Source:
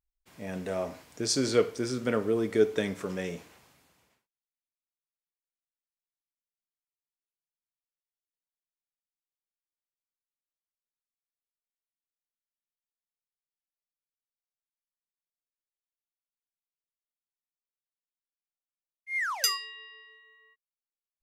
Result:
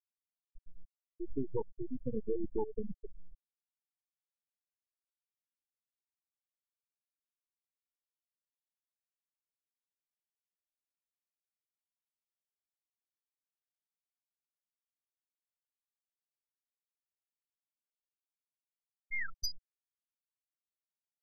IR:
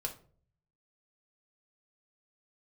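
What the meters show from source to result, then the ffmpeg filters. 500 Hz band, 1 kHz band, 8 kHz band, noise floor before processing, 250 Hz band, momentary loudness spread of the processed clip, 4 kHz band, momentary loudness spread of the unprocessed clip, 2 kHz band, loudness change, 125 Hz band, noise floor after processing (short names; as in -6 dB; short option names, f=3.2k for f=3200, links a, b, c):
-12.5 dB, -14.0 dB, -17.0 dB, under -85 dBFS, -10.0 dB, 12 LU, -13.5 dB, 16 LU, -10.5 dB, -10.5 dB, -10.0 dB, under -85 dBFS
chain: -filter_complex "[0:a]acrossover=split=650|1200[a][b][c];[b]acompressor=threshold=-50dB:ratio=6[d];[a][d][c]amix=inputs=3:normalize=0,acrusher=bits=3:dc=4:mix=0:aa=0.000001,aecho=1:1:104|208|312|416|520:0.15|0.0853|0.0486|0.0277|0.0158,afftfilt=real='re*gte(hypot(re,im),0.141)':imag='im*gte(hypot(re,im),0.141)':win_size=1024:overlap=0.75,alimiter=level_in=1.5dB:limit=-24dB:level=0:latency=1:release=316,volume=-1.5dB,volume=2.5dB"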